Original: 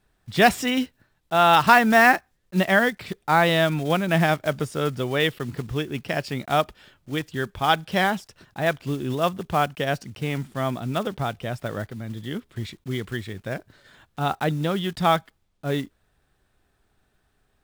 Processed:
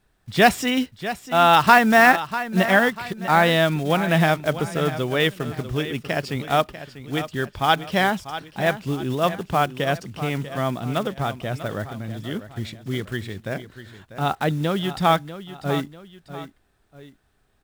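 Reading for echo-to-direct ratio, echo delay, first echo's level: −12.5 dB, 644 ms, −13.0 dB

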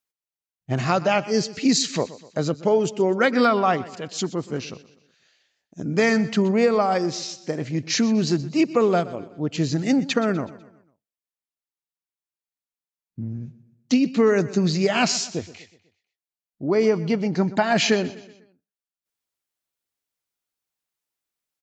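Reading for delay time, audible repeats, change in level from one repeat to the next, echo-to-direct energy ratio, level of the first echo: 124 ms, 3, −6.5 dB, −16.5 dB, −17.5 dB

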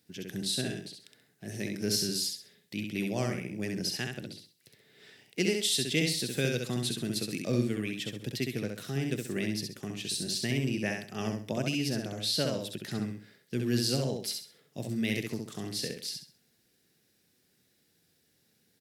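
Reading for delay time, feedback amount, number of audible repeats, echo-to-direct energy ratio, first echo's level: 66 ms, 30%, 3, −3.5 dB, −4.0 dB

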